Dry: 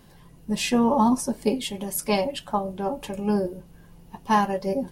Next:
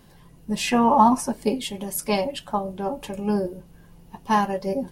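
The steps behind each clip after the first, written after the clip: spectral gain 0.68–1.33, 620–3100 Hz +7 dB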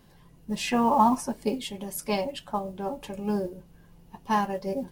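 bell 9900 Hz -2.5 dB; modulation noise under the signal 32 dB; gain -4.5 dB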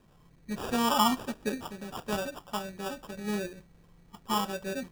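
sample-and-hold 21×; gain -4.5 dB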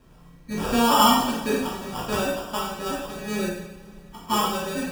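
spectral trails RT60 0.35 s; two-slope reverb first 0.64 s, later 2.6 s, from -18 dB, DRR -3.5 dB; gain +2.5 dB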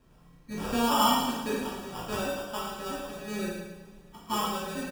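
feedback echo 0.11 s, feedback 38%, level -8.5 dB; gain -7 dB

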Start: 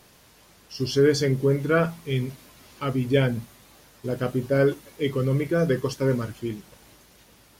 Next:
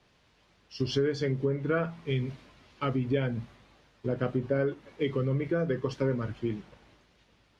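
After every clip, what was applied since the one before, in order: LPF 3200 Hz 12 dB/oct; compressor 6:1, threshold -27 dBFS, peak gain reduction 12.5 dB; three-band expander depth 40%; gain +1.5 dB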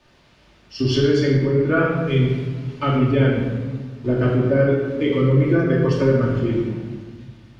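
shoebox room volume 1100 m³, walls mixed, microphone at 2.6 m; gain +5.5 dB

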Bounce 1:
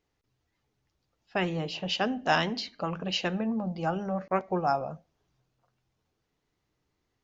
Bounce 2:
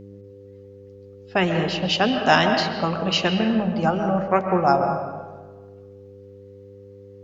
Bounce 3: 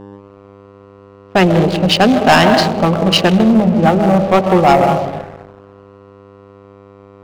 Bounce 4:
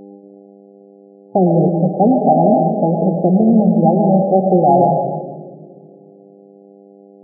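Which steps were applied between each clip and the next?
buzz 100 Hz, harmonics 5, -50 dBFS -2 dB/oct; on a send at -5 dB: reverb RT60 1.3 s, pre-delay 91 ms; on the sum: gain +8 dB
Wiener smoothing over 25 samples; sample leveller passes 3; gain +1 dB
split-band echo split 520 Hz, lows 0.229 s, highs 0.108 s, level -11 dB; FFT band-pass 120–840 Hz; gain -1.5 dB

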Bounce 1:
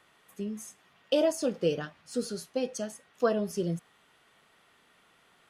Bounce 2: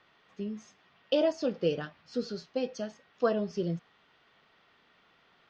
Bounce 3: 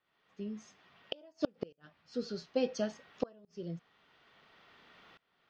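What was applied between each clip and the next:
steep low-pass 5400 Hz 36 dB/oct; gain -1 dB
tremolo saw up 0.58 Hz, depth 95%; flipped gate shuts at -23 dBFS, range -34 dB; gain +6 dB

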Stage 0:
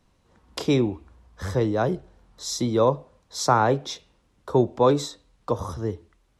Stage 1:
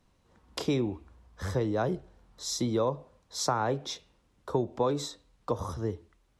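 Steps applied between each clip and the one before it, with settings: compressor, threshold -20 dBFS, peak gain reduction 7.5 dB; gain -3.5 dB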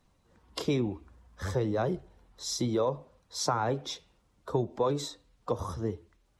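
bin magnitudes rounded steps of 15 dB

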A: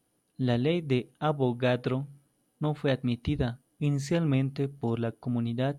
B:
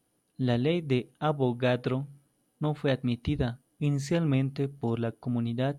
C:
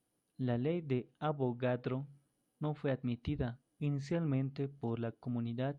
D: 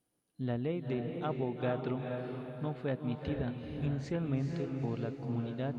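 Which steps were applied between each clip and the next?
nothing audible
treble ducked by the level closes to 1800 Hz, closed at -21.5 dBFS; gain -8 dB
diffused feedback echo 0.45 s, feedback 42%, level -4 dB

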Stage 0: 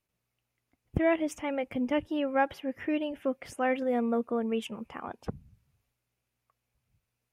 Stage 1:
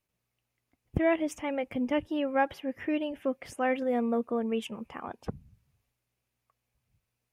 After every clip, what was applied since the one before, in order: notch 1400 Hz, Q 24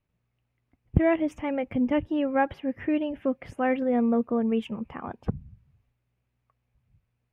tone controls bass +8 dB, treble -15 dB; gain +2 dB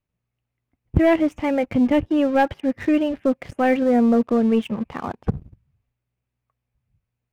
sample leveller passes 2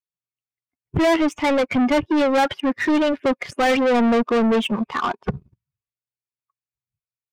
per-bin expansion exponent 1.5; overdrive pedal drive 31 dB, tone 3900 Hz, clips at -7 dBFS; gain -4 dB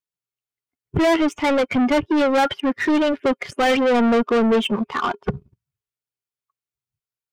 small resonant body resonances 410/1400/3100 Hz, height 7 dB, ringing for 70 ms

